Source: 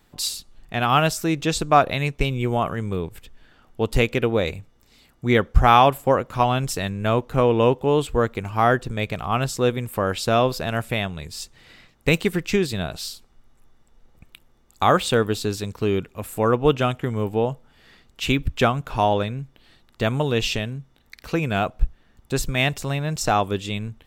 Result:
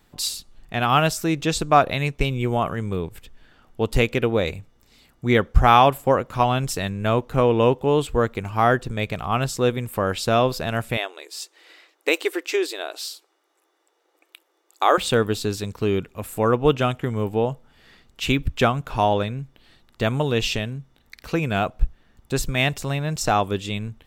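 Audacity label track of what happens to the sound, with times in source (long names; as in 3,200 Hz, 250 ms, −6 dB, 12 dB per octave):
10.970000	14.980000	linear-phase brick-wall high-pass 290 Hz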